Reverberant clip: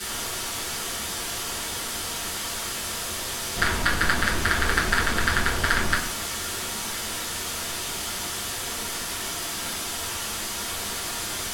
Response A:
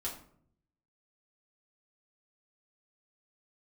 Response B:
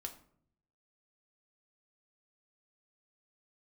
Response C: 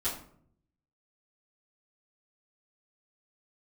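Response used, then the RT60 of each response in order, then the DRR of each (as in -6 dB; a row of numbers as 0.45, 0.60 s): C; 0.60, 0.60, 0.60 s; -5.0, 3.5, -12.5 dB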